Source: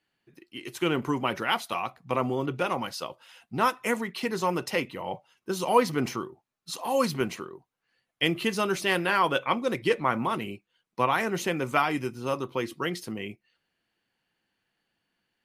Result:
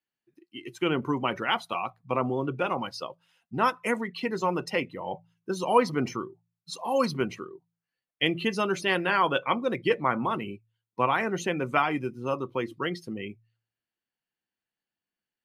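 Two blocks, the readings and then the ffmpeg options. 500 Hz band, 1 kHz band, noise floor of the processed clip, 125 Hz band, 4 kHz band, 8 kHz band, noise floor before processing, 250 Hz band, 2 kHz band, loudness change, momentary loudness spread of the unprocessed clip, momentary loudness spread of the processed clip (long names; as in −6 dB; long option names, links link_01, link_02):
0.0 dB, 0.0 dB, below −85 dBFS, −0.5 dB, −1.0 dB, −5.0 dB, −82 dBFS, 0.0 dB, −0.5 dB, 0.0 dB, 14 LU, 15 LU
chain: -af "afftdn=noise_reduction=15:noise_floor=-38,bandreject=frequency=56.24:width_type=h:width=4,bandreject=frequency=112.48:width_type=h:width=4,bandreject=frequency=168.72:width_type=h:width=4"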